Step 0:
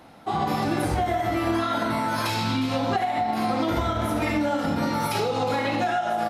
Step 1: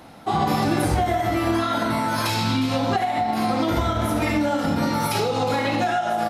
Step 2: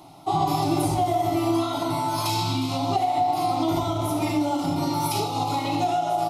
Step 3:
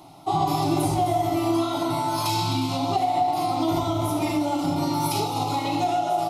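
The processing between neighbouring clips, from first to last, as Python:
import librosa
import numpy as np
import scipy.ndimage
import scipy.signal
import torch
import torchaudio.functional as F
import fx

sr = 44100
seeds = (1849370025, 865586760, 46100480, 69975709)

y1 = fx.bass_treble(x, sr, bass_db=2, treble_db=3)
y1 = fx.rider(y1, sr, range_db=3, speed_s=2.0)
y1 = y1 * librosa.db_to_amplitude(2.0)
y2 = fx.fixed_phaser(y1, sr, hz=330.0, stages=8)
y2 = fx.rev_schroeder(y2, sr, rt60_s=3.4, comb_ms=33, drr_db=13.0)
y3 = y2 + 10.0 ** (-13.0 / 20.0) * np.pad(y2, (int(258 * sr / 1000.0), 0))[:len(y2)]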